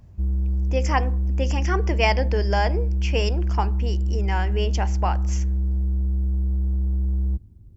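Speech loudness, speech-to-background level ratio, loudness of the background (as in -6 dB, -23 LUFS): -27.5 LUFS, -3.0 dB, -24.5 LUFS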